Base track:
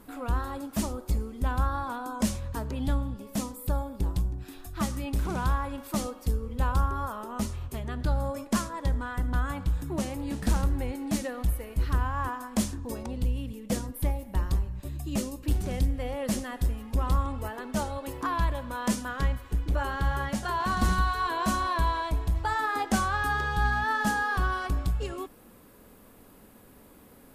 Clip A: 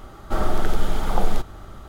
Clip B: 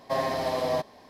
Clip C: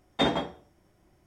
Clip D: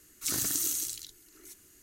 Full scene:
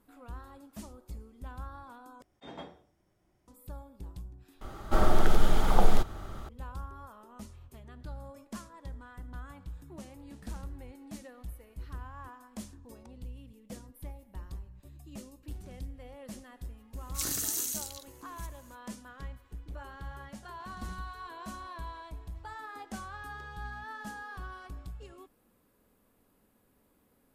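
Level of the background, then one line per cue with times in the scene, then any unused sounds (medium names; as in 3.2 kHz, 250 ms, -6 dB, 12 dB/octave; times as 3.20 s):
base track -15.5 dB
2.22 s: replace with C -8.5 dB + slow attack 365 ms
4.61 s: replace with A -1.5 dB
16.93 s: add D -2.5 dB
not used: B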